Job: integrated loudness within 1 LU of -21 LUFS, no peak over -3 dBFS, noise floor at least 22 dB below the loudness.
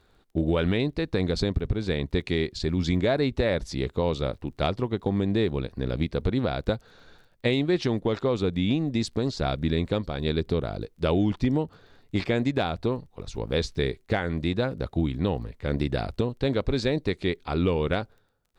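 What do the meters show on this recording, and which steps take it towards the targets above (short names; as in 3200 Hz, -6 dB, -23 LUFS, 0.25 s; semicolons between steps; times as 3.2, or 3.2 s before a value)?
ticks 24/s; loudness -27.5 LUFS; peak -10.5 dBFS; loudness target -21.0 LUFS
-> de-click; gain +6.5 dB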